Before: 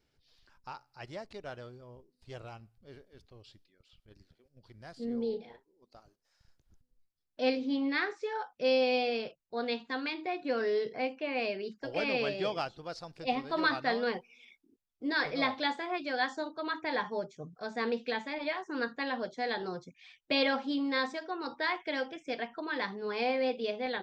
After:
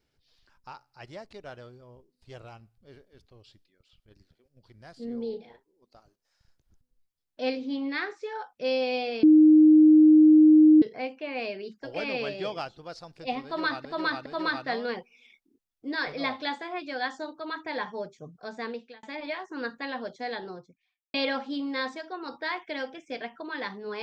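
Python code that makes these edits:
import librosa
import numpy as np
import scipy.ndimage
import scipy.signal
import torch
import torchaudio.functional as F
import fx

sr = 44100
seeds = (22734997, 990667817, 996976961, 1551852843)

y = fx.studio_fade_out(x, sr, start_s=19.39, length_s=0.93)
y = fx.edit(y, sr, fx.bleep(start_s=9.23, length_s=1.59, hz=309.0, db=-12.0),
    fx.repeat(start_s=13.44, length_s=0.41, count=3),
    fx.fade_out_span(start_s=17.72, length_s=0.49), tone=tone)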